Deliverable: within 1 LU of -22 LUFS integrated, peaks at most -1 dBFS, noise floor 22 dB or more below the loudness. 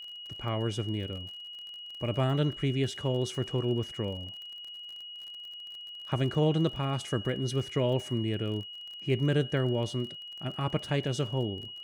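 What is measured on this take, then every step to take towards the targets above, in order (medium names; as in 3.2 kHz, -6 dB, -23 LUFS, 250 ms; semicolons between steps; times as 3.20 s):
tick rate 38 per s; steady tone 2.9 kHz; tone level -41 dBFS; loudness -32.0 LUFS; peak level -16.0 dBFS; loudness target -22.0 LUFS
-> de-click; band-stop 2.9 kHz, Q 30; trim +10 dB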